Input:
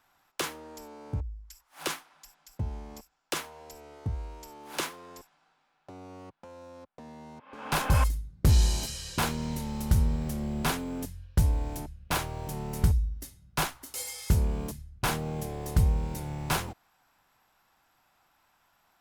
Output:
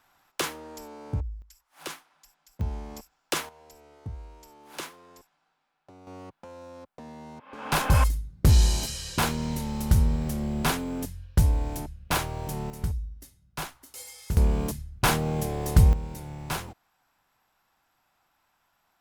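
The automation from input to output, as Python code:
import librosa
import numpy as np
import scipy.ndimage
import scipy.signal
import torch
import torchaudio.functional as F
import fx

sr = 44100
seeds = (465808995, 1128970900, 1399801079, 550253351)

y = fx.gain(x, sr, db=fx.steps((0.0, 3.0), (1.42, -5.0), (2.61, 4.0), (3.49, -5.0), (6.07, 3.0), (12.7, -6.0), (14.37, 6.0), (15.93, -3.0)))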